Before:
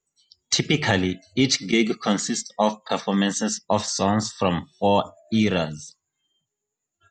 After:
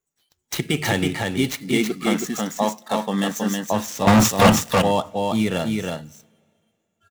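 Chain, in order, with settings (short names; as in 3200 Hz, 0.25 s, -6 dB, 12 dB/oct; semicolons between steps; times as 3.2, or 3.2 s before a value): median filter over 9 samples; high shelf 4800 Hz +7.5 dB; 4.07–4.5 sample leveller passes 5; on a send: echo 0.321 s -3.5 dB; on the sum: two-slope reverb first 0.22 s, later 2.5 s, from -18 dB, DRR 20 dB; gain -1.5 dB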